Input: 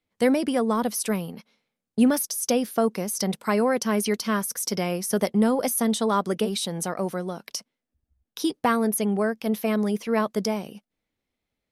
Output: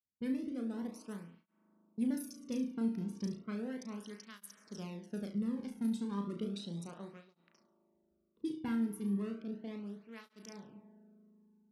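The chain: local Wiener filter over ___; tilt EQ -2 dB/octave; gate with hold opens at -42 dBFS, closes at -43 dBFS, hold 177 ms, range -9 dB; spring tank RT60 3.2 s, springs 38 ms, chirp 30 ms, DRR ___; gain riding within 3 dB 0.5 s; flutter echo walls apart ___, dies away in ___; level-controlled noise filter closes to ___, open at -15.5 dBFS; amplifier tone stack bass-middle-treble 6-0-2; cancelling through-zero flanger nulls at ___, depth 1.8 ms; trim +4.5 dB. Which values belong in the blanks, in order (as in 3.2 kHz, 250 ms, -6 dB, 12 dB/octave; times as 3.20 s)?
25 samples, 13.5 dB, 6 m, 0.41 s, 740 Hz, 0.34 Hz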